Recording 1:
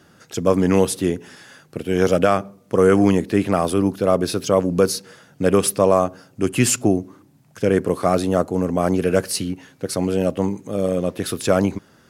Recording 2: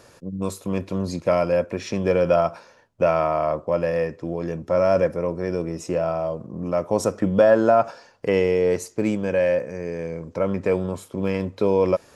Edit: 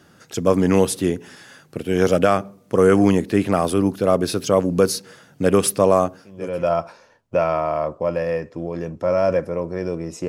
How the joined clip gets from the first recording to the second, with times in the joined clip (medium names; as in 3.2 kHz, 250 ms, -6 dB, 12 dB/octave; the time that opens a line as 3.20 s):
recording 1
6.41 s: go over to recording 2 from 2.08 s, crossfade 0.66 s quadratic